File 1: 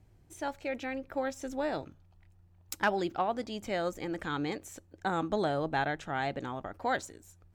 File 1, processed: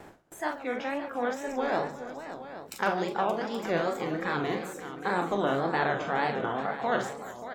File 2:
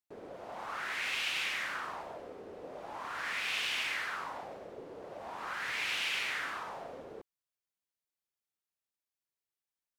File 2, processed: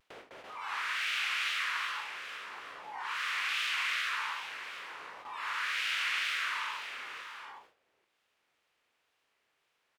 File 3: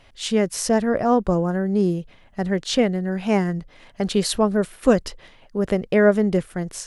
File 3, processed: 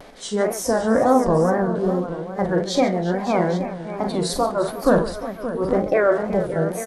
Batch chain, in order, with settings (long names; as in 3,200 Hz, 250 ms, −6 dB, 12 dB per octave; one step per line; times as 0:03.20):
compressor on every frequency bin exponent 0.4
noise reduction from a noise print of the clip's start 19 dB
multi-tap delay 42/57/141/355/575/822 ms −7.5/−14/−14.5/−15.5/−11.5/−13.5 dB
flanger 1.9 Hz, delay 8.5 ms, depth 9.5 ms, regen +76%
mains-hum notches 50/100/150/200/250/300/350 Hz
tape wow and flutter 130 cents
upward compression, threshold −40 dBFS
high-shelf EQ 3,000 Hz −4.5 dB
noise gate with hold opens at −40 dBFS
level that may fall only so fast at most 150 dB per second
level +2.5 dB